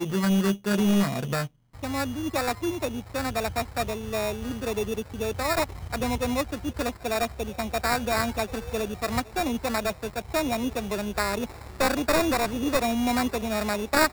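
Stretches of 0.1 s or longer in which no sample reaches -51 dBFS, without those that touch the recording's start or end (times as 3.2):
1.48–1.73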